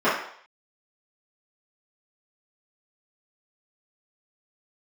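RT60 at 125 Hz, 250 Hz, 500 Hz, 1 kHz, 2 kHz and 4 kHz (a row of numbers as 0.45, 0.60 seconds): 0.35, 0.45, 0.60, 0.65, 0.60, 0.60 seconds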